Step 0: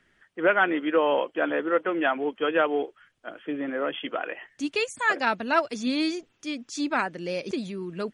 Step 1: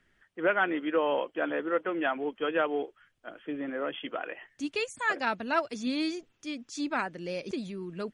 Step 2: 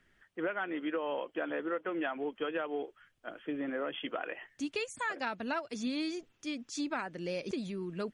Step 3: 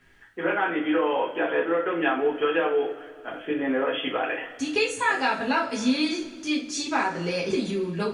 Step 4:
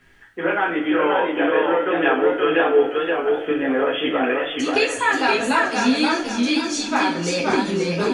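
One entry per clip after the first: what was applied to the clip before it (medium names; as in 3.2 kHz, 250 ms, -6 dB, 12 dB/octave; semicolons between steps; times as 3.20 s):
bass shelf 85 Hz +8 dB; trim -5 dB
compression 10:1, threshold -31 dBFS, peak gain reduction 11 dB
two-slope reverb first 0.33 s, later 2.1 s, from -19 dB, DRR -5.5 dB; trim +5.5 dB
modulated delay 528 ms, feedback 36%, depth 90 cents, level -3 dB; trim +4 dB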